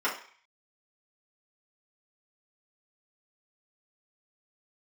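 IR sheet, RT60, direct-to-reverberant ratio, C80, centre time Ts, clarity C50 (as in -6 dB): 0.45 s, -7.0 dB, 12.5 dB, 24 ms, 8.0 dB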